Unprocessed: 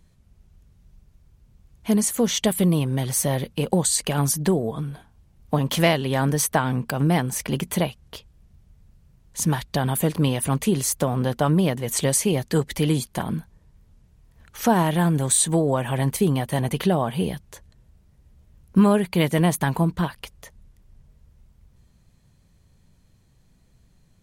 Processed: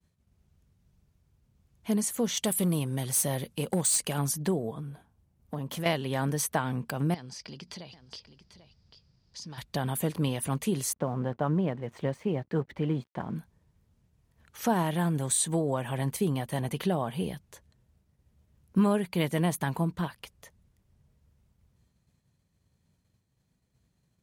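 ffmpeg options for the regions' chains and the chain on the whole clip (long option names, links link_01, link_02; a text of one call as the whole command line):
ffmpeg -i in.wav -filter_complex "[0:a]asettb=1/sr,asplit=3[link_01][link_02][link_03];[link_01]atrim=end=2.374[link_04];[link_02]atrim=start=2.37:end=4.18,asetpts=PTS-STARTPTS,afade=type=in:duration=0.004:curve=qsin,afade=type=out:start_time=1.806:duration=0.004:curve=qsin,equalizer=frequency=10000:width_type=o:width=1.4:gain=8,asoftclip=type=hard:threshold=-14dB[link_05];[link_03]atrim=start=4.176[link_06];[link_04][link_05]acrossfade=duration=0.004:curve1=hsin:curve2=qsin[link_07];[link_07][link_06]acrossfade=duration=0.004:curve1=qsin:curve2=hsin,asettb=1/sr,asplit=3[link_08][link_09][link_10];[link_08]atrim=end=4.744[link_11];[link_09]atrim=start=4.74:end=5.86,asetpts=PTS-STARTPTS,afade=type=in:duration=0.004:curve=qsin,afade=type=out:start_time=1.116:duration=0.004:curve=qsin,equalizer=frequency=3600:width_type=o:width=2.6:gain=-5,acompressor=threshold=-27dB:ratio=2:attack=3.2:release=140:knee=1:detection=peak,asoftclip=type=hard:threshold=-19dB[link_12];[link_10]atrim=start=5.856[link_13];[link_11][link_12]acrossfade=duration=0.004:curve1=hsin:curve2=qsin[link_14];[link_14][link_13]acrossfade=duration=0.004:curve1=qsin:curve2=hsin,asettb=1/sr,asplit=3[link_15][link_16][link_17];[link_15]atrim=end=7.144[link_18];[link_16]atrim=start=7.14:end=9.58,asetpts=PTS-STARTPTS,afade=type=in:duration=0.004:curve=qsin,afade=type=out:start_time=2.436:duration=0.004:curve=qsin,lowpass=frequency=4900:width_type=q:width=9.4,acompressor=threshold=-32dB:ratio=8:attack=3.2:release=140:knee=1:detection=peak,aecho=1:1:792:0.224,atrim=end_sample=107604[link_19];[link_17]atrim=start=9.576[link_20];[link_18][link_19]acrossfade=duration=0.004:curve1=hsin:curve2=qsin[link_21];[link_21][link_20]acrossfade=duration=0.004:curve1=qsin:curve2=hsin,asettb=1/sr,asplit=3[link_22][link_23][link_24];[link_22]atrim=end=10.934[link_25];[link_23]atrim=start=10.93:end=13.36,asetpts=PTS-STARTPTS,afade=type=in:duration=0.004:curve=qsin,afade=type=out:start_time=2.426:duration=0.004:curve=qsin,lowpass=1800,bandreject=frequency=50:width_type=h:width=6,bandreject=frequency=100:width_type=h:width=6,aeval=exprs='sgn(val(0))*max(abs(val(0))-0.00316,0)':channel_layout=same[link_26];[link_24]atrim=start=13.356[link_27];[link_25][link_26]acrossfade=duration=0.004:curve1=hsin:curve2=qsin[link_28];[link_28][link_27]acrossfade=duration=0.004:curve1=qsin:curve2=hsin,agate=range=-33dB:threshold=-53dB:ratio=3:detection=peak,highpass=69,volume=-7.5dB" out.wav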